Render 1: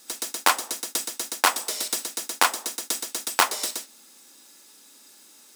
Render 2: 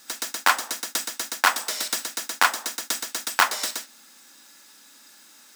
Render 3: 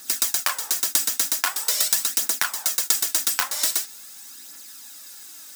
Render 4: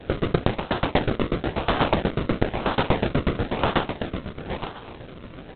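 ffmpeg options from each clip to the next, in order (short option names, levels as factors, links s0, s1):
-af "equalizer=f=400:t=o:w=0.67:g=-7,equalizer=f=1600:t=o:w=0.67:g=6,equalizer=f=10000:t=o:w=0.67:g=-5,alimiter=level_in=1.41:limit=0.891:release=50:level=0:latency=1,volume=0.891"
-af "acompressor=threshold=0.0562:ratio=6,aphaser=in_gain=1:out_gain=1:delay=4:decay=0.42:speed=0.44:type=triangular,crystalizer=i=2:c=0"
-af "aecho=1:1:866|1732|2598:0.473|0.0899|0.0171,acrusher=samples=37:mix=1:aa=0.000001:lfo=1:lforange=37:lforate=1" -ar 8000 -c:a adpcm_g726 -b:a 16k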